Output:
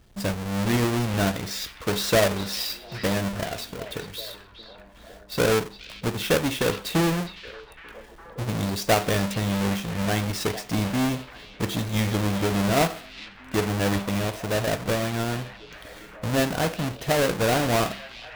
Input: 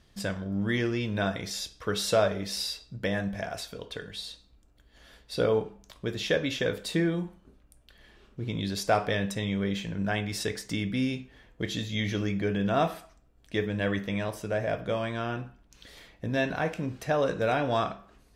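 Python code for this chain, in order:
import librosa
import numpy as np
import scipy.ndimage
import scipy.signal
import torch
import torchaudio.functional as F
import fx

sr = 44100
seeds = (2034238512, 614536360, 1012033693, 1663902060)

y = fx.halfwave_hold(x, sr)
y = fx.echo_stepped(y, sr, ms=410, hz=3300.0, octaves=-0.7, feedback_pct=70, wet_db=-9.5)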